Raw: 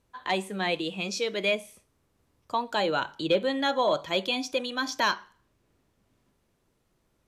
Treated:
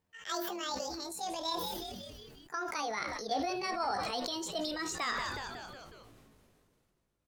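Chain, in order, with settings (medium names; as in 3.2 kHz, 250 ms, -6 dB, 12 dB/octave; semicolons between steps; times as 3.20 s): pitch bend over the whole clip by +10.5 st ending unshifted; frequency-shifting echo 183 ms, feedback 60%, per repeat -140 Hz, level -19.5 dB; decay stretcher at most 24 dB/s; trim -9 dB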